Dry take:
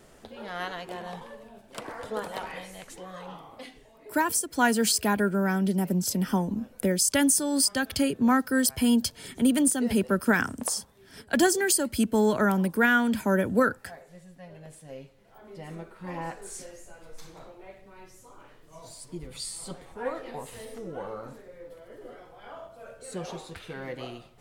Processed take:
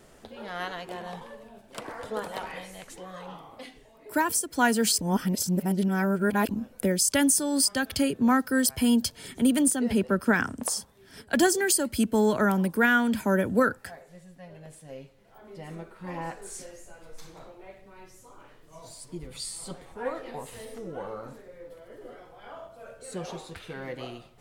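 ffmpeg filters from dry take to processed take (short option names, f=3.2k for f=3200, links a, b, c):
-filter_complex "[0:a]asettb=1/sr,asplit=3[a][b][c];[a]atrim=end=9.754[d];[b]atrim=start=9.75:end=10.63,asetpts=PTS-STARTPTS,afade=t=in:d=0.004:c=qsin,afade=t=out:st=0.876:d=0.004:c=qsin,highshelf=f=6.7k:g=-8.5[e];[c]atrim=start=10.626[f];[d][e]acrossfade=d=0.004:c1=hsin:c2=qsin[g];[g][f]acrossfade=d=0.004:c1=qsin:c2=hsin,asplit=3[h][i][j];[h]atrim=end=5.012[k];[i]atrim=start=5.008:end=6.492,asetpts=PTS-STARTPTS,areverse[l];[j]atrim=start=6.488[m];[k][l]acrossfade=d=0.004:c1=hsin:c2=hsin[n];[n][m]acrossfade=d=0.004:c1=hsin:c2=hsin"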